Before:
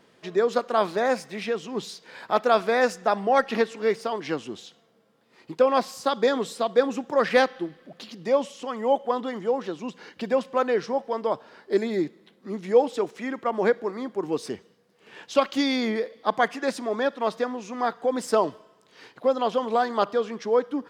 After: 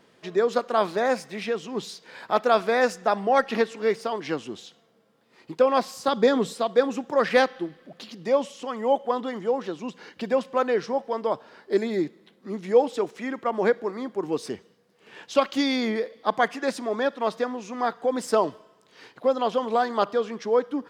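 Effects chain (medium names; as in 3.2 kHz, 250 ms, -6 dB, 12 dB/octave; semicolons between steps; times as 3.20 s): 6.08–6.54 s: bass shelf 230 Hz +11.5 dB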